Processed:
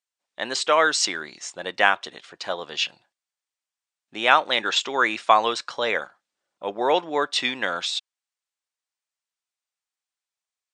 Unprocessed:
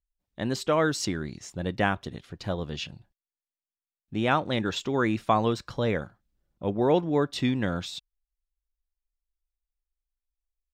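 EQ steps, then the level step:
high-pass filter 710 Hz 12 dB per octave
Butterworth low-pass 9,300 Hz 72 dB per octave
dynamic equaliser 2,900 Hz, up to +3 dB, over −41 dBFS, Q 0.77
+8.5 dB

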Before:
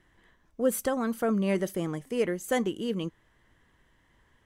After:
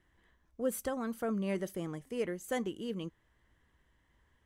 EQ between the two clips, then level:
parametric band 64 Hz +9 dB 0.58 octaves
−7.5 dB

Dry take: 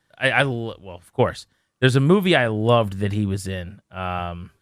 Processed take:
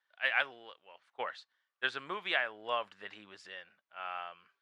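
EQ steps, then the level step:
high-pass filter 1,100 Hz 12 dB per octave
high-frequency loss of the air 140 metres
high-shelf EQ 7,500 Hz −9 dB
−7.5 dB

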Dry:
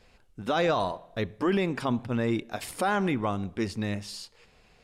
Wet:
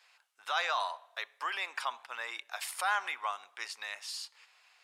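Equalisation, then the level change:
high-pass filter 910 Hz 24 dB per octave
0.0 dB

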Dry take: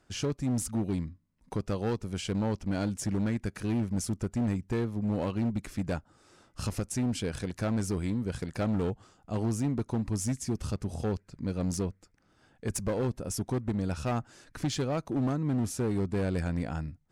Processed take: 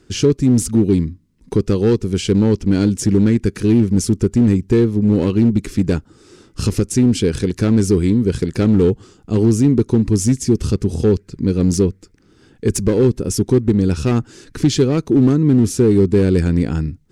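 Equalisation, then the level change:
low shelf with overshoot 510 Hz +7 dB, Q 3
parametric band 4,900 Hz +6 dB 2.5 octaves
+7.5 dB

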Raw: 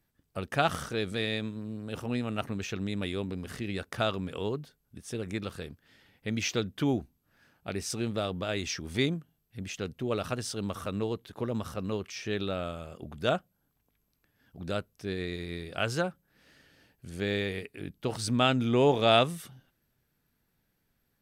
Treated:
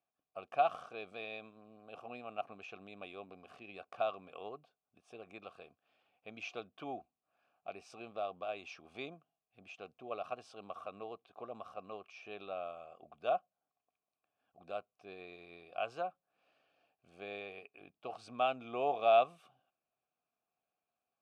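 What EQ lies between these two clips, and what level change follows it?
formant filter a
+2.0 dB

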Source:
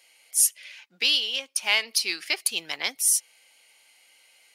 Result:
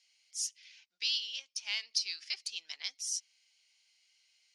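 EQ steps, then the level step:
resonant band-pass 5,600 Hz, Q 2.3
high-frequency loss of the air 92 metres
0.0 dB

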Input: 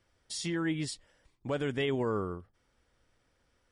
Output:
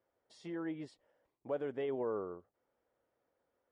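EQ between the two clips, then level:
resonant band-pass 580 Hz, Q 1.3
−2.0 dB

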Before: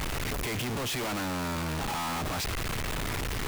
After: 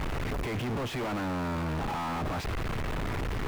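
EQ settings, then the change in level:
high-shelf EQ 2,300 Hz −7.5 dB
high-shelf EQ 4,600 Hz −9 dB
+1.5 dB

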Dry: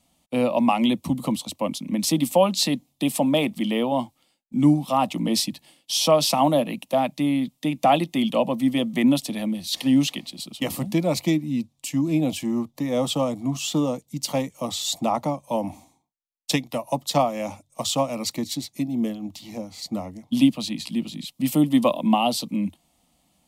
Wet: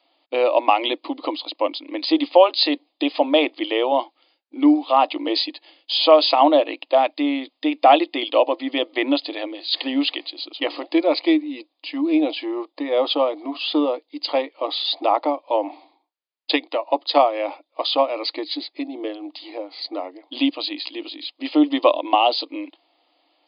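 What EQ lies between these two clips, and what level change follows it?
linear-phase brick-wall high-pass 280 Hz
linear-phase brick-wall low-pass 5,000 Hz
+5.5 dB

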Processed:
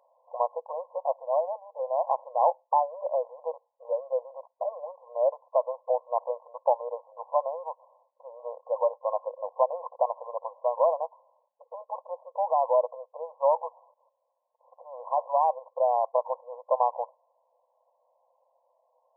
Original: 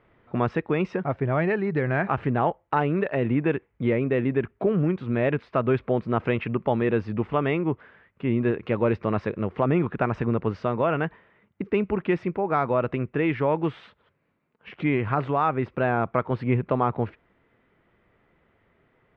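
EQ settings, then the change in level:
linear-phase brick-wall band-pass 490–1,100 Hz
+2.5 dB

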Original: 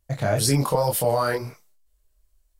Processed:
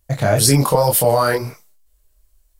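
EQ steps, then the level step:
high-shelf EQ 8,900 Hz +5 dB
+6.5 dB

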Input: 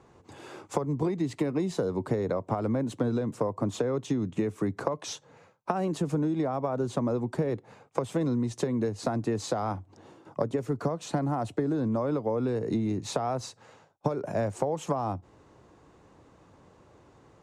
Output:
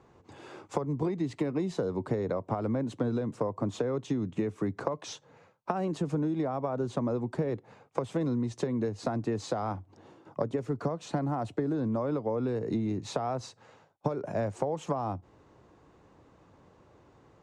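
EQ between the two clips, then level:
high-frequency loss of the air 51 metres
−2.0 dB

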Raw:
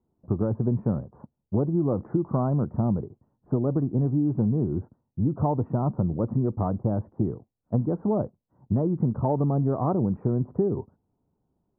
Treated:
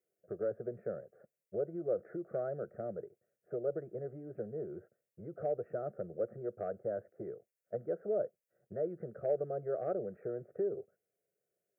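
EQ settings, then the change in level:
high-pass filter 640 Hz 12 dB per octave
Butterworth band-reject 950 Hz, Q 0.9
phaser with its sweep stopped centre 1,000 Hz, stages 6
+5.0 dB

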